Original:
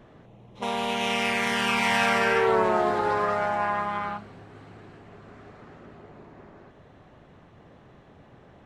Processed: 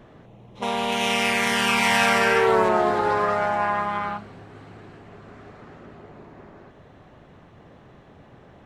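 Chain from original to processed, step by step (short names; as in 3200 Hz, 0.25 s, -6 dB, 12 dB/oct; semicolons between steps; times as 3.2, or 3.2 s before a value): 0.92–2.69 high shelf 5800 Hz +6.5 dB; gain +3 dB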